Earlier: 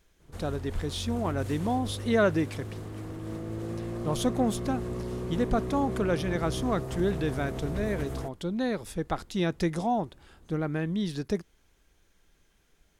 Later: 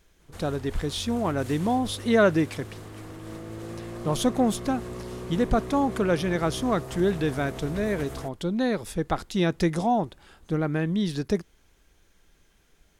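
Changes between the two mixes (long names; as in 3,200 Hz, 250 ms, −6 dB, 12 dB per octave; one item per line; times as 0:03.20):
speech +4.0 dB
background: add tilt shelving filter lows −4 dB, about 640 Hz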